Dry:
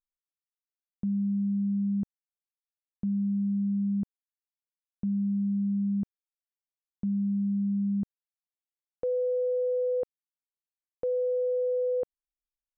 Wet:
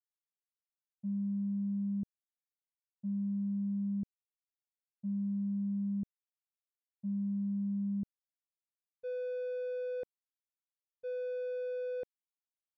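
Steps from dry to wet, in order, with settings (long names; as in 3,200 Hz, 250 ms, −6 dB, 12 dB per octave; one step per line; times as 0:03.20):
adaptive Wiener filter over 41 samples
downward expander −23 dBFS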